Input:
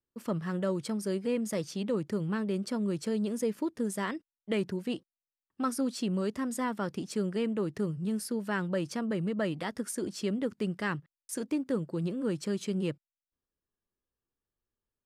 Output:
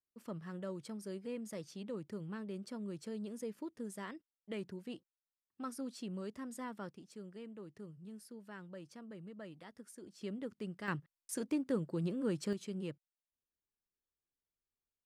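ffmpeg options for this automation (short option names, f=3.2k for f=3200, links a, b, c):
-af "asetnsamples=n=441:p=0,asendcmd='6.9 volume volume -18.5dB;10.21 volume volume -11dB;10.88 volume volume -4dB;12.53 volume volume -10dB',volume=-12dB"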